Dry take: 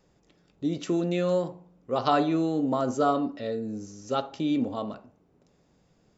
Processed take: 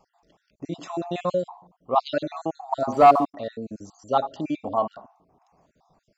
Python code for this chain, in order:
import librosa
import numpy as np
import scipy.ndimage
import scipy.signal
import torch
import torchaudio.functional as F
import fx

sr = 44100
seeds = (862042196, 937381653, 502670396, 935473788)

y = fx.spec_dropout(x, sr, seeds[0], share_pct=45)
y = fx.band_shelf(y, sr, hz=860.0, db=12.5, octaves=1.1)
y = fx.leveller(y, sr, passes=1, at=(2.92, 3.35))